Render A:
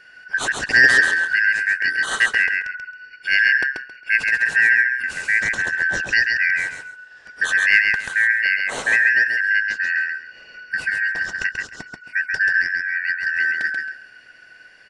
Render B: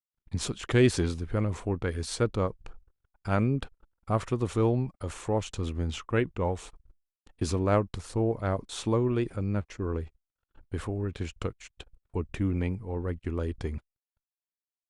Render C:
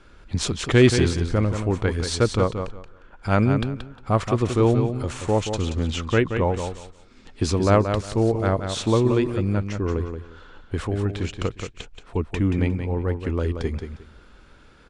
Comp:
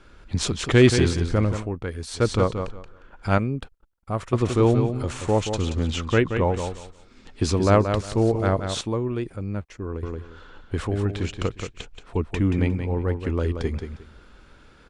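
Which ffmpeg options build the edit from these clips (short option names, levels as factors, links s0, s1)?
-filter_complex "[1:a]asplit=3[s0][s1][s2];[2:a]asplit=4[s3][s4][s5][s6];[s3]atrim=end=1.7[s7];[s0]atrim=start=1.54:end=2.28[s8];[s4]atrim=start=2.12:end=3.382[s9];[s1]atrim=start=3.378:end=4.332[s10];[s5]atrim=start=4.328:end=8.812[s11];[s2]atrim=start=8.808:end=10.032[s12];[s6]atrim=start=10.028[s13];[s7][s8]acrossfade=d=0.16:c1=tri:c2=tri[s14];[s14][s9]acrossfade=d=0.16:c1=tri:c2=tri[s15];[s15][s10]acrossfade=d=0.004:c1=hsin:c2=hsin[s16];[s16][s11]acrossfade=d=0.004:c1=hsin:c2=hsin[s17];[s17][s12]acrossfade=d=0.004:c1=hsin:c2=hsin[s18];[s18][s13]acrossfade=d=0.004:c1=hsin:c2=hsin"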